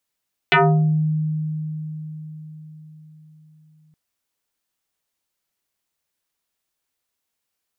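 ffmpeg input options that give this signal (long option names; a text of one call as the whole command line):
ffmpeg -f lavfi -i "aevalsrc='0.299*pow(10,-3*t/4.82)*sin(2*PI*155*t+5.8*pow(10,-3*t/0.55)*sin(2*PI*3.54*155*t))':duration=3.42:sample_rate=44100" out.wav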